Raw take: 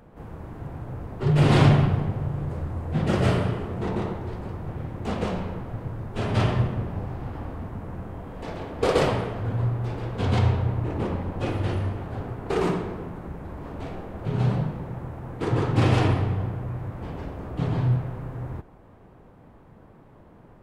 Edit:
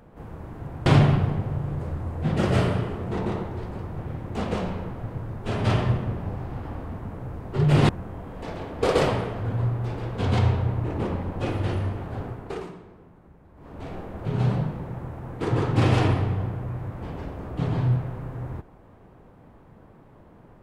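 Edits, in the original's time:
0:00.86–0:01.56: move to 0:07.89
0:12.25–0:13.96: duck −16 dB, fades 0.42 s

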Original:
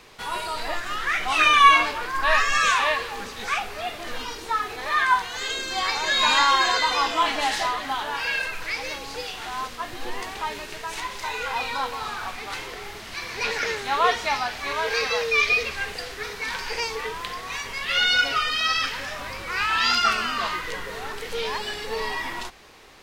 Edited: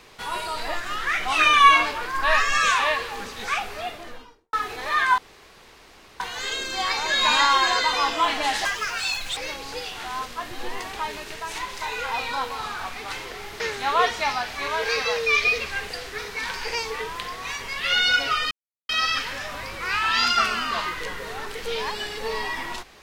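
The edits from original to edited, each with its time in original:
0:03.73–0:04.53: fade out and dull
0:05.18: splice in room tone 1.02 s
0:07.63–0:08.79: play speed 161%
0:13.02–0:13.65: remove
0:18.56: splice in silence 0.38 s

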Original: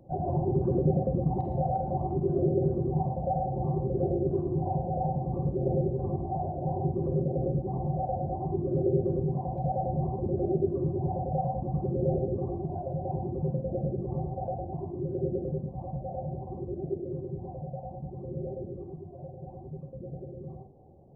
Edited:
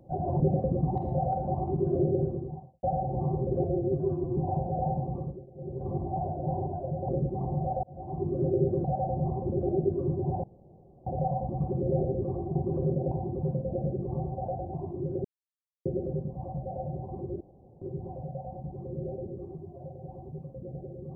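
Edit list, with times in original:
0:00.40–0:00.83: remove
0:02.43–0:03.26: fade out and dull
0:04.07–0:04.56: time-stretch 1.5×
0:05.20–0:06.18: duck −24 dB, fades 0.45 s
0:06.85–0:07.41: swap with 0:12.69–0:13.11
0:08.16–0:08.60: fade in linear
0:09.17–0:09.61: remove
0:11.20: splice in room tone 0.63 s
0:15.24: splice in silence 0.61 s
0:16.79–0:17.20: fill with room tone

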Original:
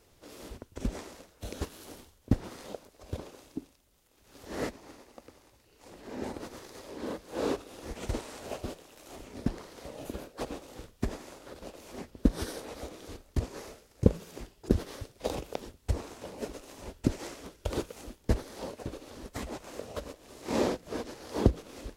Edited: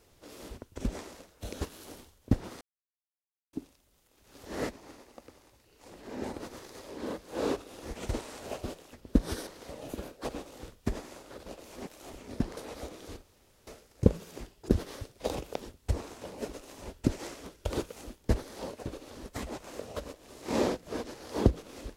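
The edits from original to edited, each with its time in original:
0:02.61–0:03.53: silence
0:08.93–0:09.63: swap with 0:12.03–0:12.57
0:13.23–0:13.67: fill with room tone

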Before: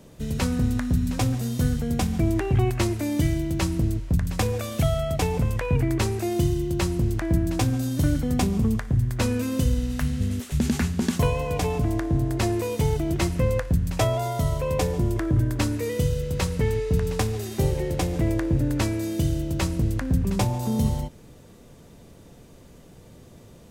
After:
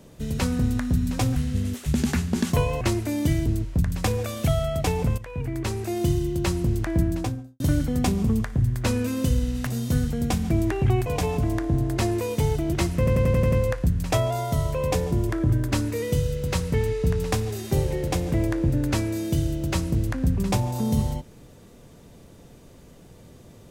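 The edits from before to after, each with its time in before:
0:01.36–0:02.75: swap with 0:10.02–0:11.47
0:03.40–0:03.81: remove
0:05.53–0:06.46: fade in, from −13.5 dB
0:07.38–0:07.95: fade out and dull
0:13.39: stutter 0.09 s, 7 plays

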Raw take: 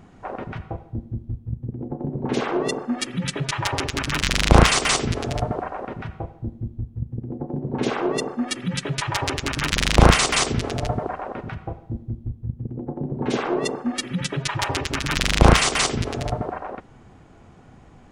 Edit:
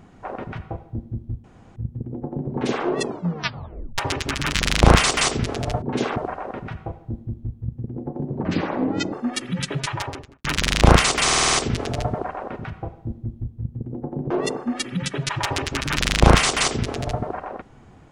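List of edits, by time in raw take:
0:01.44: splice in room tone 0.32 s
0:02.67: tape stop 0.99 s
0:07.77–0:08.27: play speed 72%
0:08.95–0:09.59: fade out and dull
0:10.38: stutter 0.05 s, 7 plays
0:13.15–0:13.49: move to 0:05.50

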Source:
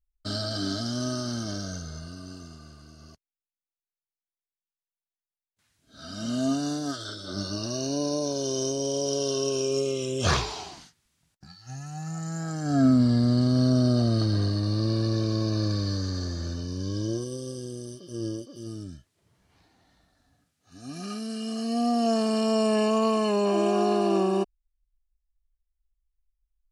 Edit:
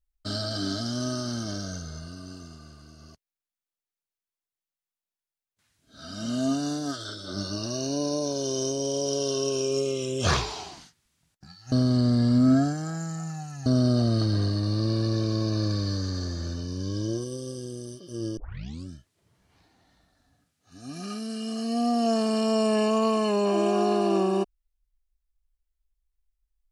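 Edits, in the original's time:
0:11.72–0:13.66: reverse
0:18.37: tape start 0.51 s

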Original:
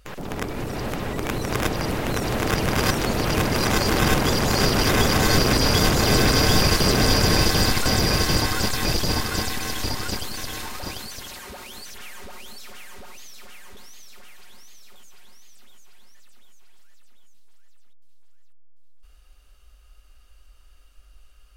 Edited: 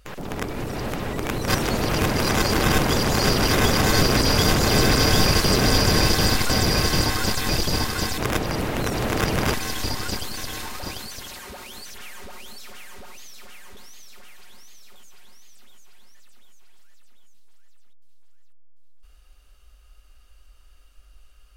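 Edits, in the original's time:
0:01.48–0:02.84: move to 0:09.54

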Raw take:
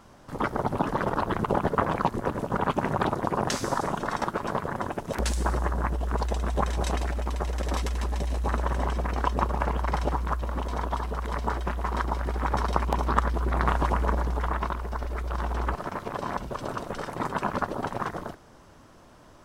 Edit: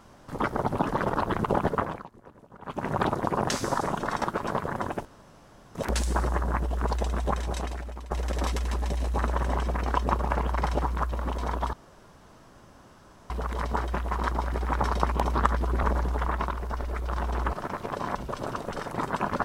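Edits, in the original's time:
0:01.68–0:02.99: duck −22 dB, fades 0.38 s
0:05.05: splice in room tone 0.70 s
0:06.39–0:07.41: fade out, to −12.5 dB
0:11.03: splice in room tone 1.57 s
0:13.56–0:14.05: remove

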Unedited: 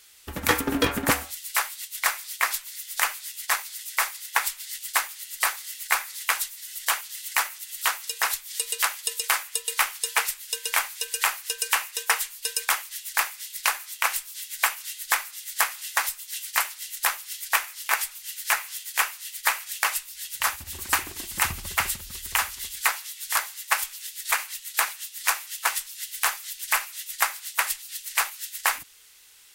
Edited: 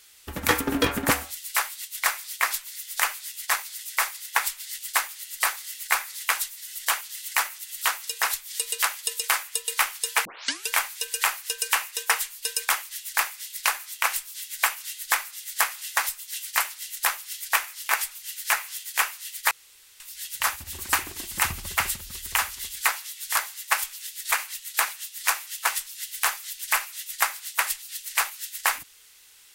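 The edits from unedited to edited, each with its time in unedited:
0:10.25: tape start 0.43 s
0:19.51–0:20.00: fill with room tone

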